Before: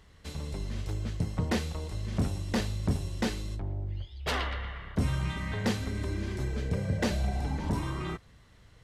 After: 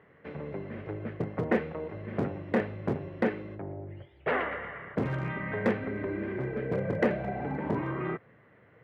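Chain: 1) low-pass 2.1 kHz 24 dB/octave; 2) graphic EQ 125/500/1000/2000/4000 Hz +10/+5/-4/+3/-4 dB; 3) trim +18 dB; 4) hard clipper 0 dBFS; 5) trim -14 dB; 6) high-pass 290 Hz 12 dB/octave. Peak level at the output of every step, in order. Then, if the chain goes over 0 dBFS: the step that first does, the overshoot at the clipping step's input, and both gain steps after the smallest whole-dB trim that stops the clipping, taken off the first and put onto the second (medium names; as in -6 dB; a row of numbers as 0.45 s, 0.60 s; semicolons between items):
-18.0 dBFS, -11.5 dBFS, +6.5 dBFS, 0.0 dBFS, -14.0 dBFS, -12.5 dBFS; step 3, 6.5 dB; step 3 +11 dB, step 5 -7 dB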